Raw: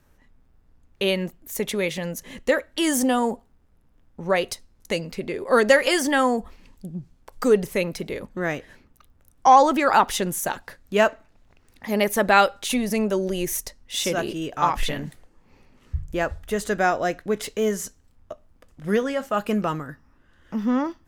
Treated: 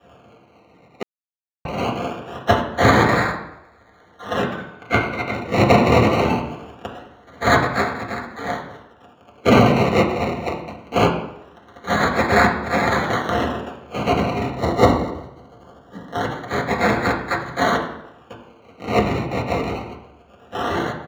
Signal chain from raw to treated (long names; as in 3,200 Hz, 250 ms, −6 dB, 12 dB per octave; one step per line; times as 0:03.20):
gate on every frequency bin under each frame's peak −30 dB weak
comb filter 6.6 ms, depth 78%
sample-and-hold swept by an LFO 21×, swing 60% 0.22 Hz
0:04.43–0:05.34: hollow resonant body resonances 1,500/2,100/3,600 Hz, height 17 dB, ringing for 25 ms
0:14.54–0:16.25: Butterworth band-reject 2,500 Hz, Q 2.6
convolution reverb RT60 0.85 s, pre-delay 3 ms, DRR 0 dB
0:01.03–0:01.65: silence
boost into a limiter +11.5 dB
level −1 dB